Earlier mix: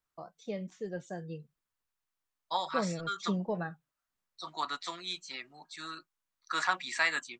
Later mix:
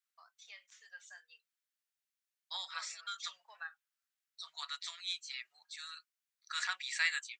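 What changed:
second voice: remove resonant high-pass 1.1 kHz, resonance Q 2; master: add inverse Chebyshev high-pass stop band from 310 Hz, stop band 70 dB

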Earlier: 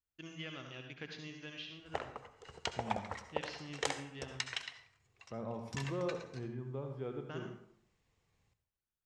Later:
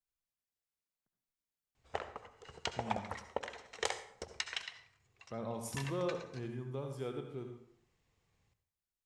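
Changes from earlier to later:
first voice: muted; second voice: remove distance through air 400 m

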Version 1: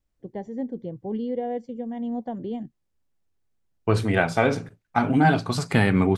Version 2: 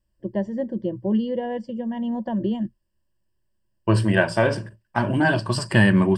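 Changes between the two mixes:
first voice +5.0 dB; master: add rippled EQ curve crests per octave 1.3, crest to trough 14 dB

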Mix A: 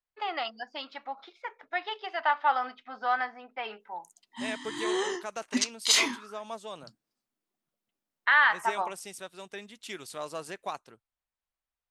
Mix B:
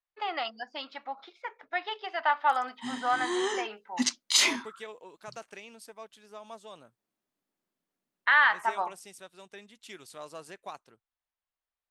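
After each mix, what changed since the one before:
second voice -6.0 dB; background: entry -1.55 s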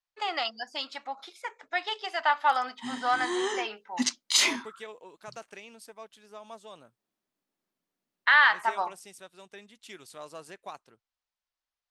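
first voice: remove distance through air 240 m

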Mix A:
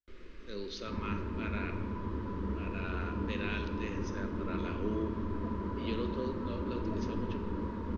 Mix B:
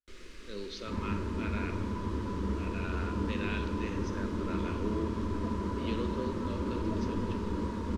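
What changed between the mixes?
first sound: remove tape spacing loss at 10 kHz 26 dB; second sound +3.0 dB

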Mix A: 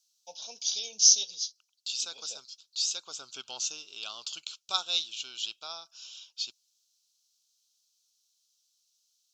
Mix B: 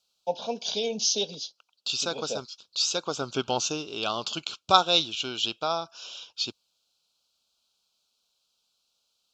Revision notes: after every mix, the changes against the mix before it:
first voice: add peaking EQ 5.9 kHz -10.5 dB 0.62 oct; master: remove pre-emphasis filter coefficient 0.97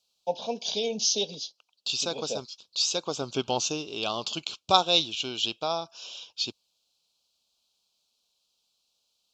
master: add peaking EQ 1.4 kHz -9 dB 0.4 oct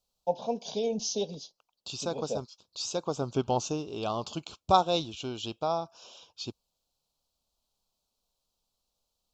master: remove frequency weighting D

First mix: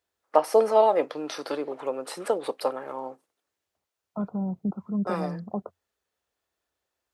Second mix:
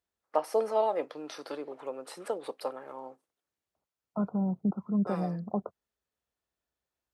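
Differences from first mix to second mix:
first voice -8.0 dB; master: add peaking EQ 88 Hz -7 dB 0.21 oct

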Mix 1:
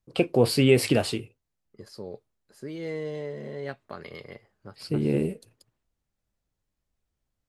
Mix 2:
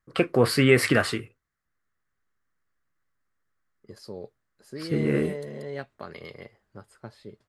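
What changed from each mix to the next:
first voice: add high-order bell 1.5 kHz +13.5 dB 1.1 oct; second voice: entry +2.10 s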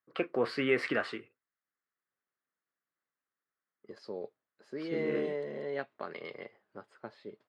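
first voice -8.5 dB; master: add band-pass 270–3400 Hz

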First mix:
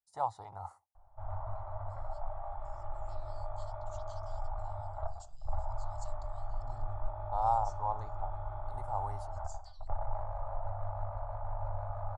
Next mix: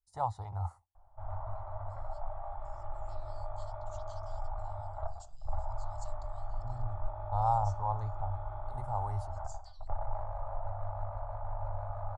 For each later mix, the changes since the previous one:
first voice: remove high-pass 220 Hz 12 dB/octave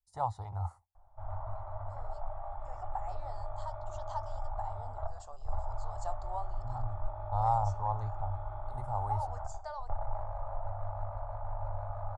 second voice: remove Chebyshev band-stop 130–4000 Hz, order 2

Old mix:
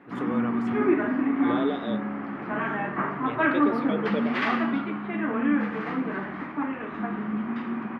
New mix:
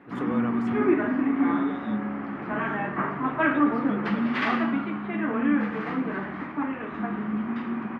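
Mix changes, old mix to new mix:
second voice -11.0 dB; master: add bass shelf 66 Hz +8.5 dB

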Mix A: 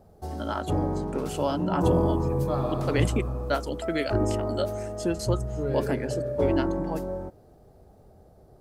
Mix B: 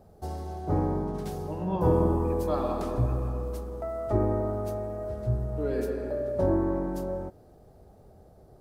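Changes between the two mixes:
first voice: muted; second voice: add steep high-pass 180 Hz 72 dB/octave

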